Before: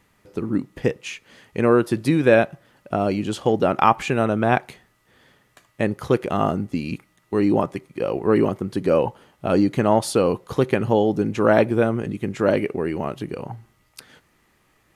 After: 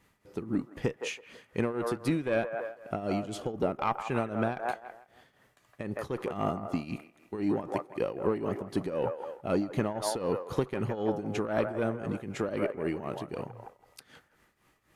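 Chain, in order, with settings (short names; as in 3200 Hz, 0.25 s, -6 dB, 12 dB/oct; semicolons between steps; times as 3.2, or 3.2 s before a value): one diode to ground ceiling -6.5 dBFS; 3.19–3.79 bell 1100 Hz -> 3600 Hz -6.5 dB 2.7 oct; 9.52–10.43 notch 8000 Hz, Q 9.4; on a send: band-limited delay 0.163 s, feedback 30%, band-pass 930 Hz, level -5 dB; on the sum: compressor 4:1, threshold -20 dBFS, peak gain reduction 7.5 dB; tremolo triangle 3.9 Hz, depth 80%; gain -3 dB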